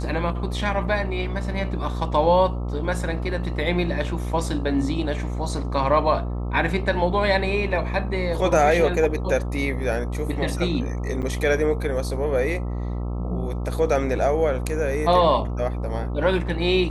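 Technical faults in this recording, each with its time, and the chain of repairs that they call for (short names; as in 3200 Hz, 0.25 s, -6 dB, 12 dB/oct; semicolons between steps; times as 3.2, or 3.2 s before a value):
buzz 60 Hz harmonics 22 -27 dBFS
11.22–11.23 gap 8.1 ms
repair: de-hum 60 Hz, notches 22; interpolate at 11.22, 8.1 ms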